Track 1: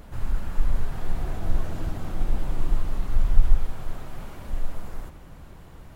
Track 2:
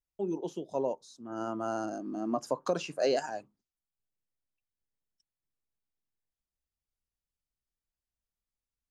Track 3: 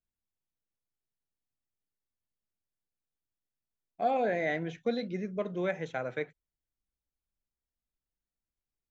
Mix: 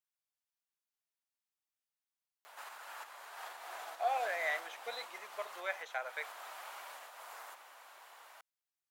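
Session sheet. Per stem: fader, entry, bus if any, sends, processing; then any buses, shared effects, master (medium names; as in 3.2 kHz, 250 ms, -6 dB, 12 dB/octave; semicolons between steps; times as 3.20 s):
+0.5 dB, 2.45 s, bus A, no send, none
mute
-0.5 dB, 0.00 s, no bus, no send, none
bus A: 0.0 dB, compression 3:1, threshold -22 dBFS, peak gain reduction 12.5 dB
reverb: none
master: high-pass 740 Hz 24 dB/octave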